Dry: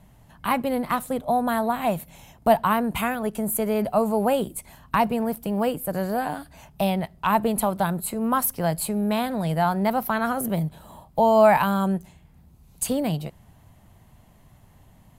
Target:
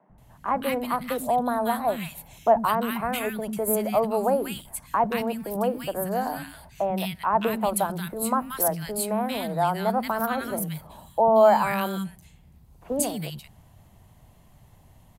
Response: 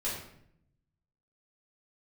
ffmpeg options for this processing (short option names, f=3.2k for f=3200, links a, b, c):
-filter_complex "[0:a]acrossover=split=200|890|2400[a][b][c][d];[a]asoftclip=type=tanh:threshold=-36.5dB[e];[e][b][c][d]amix=inputs=4:normalize=0,acrossover=split=250|1600[f][g][h];[f]adelay=90[i];[h]adelay=180[j];[i][g][j]amix=inputs=3:normalize=0"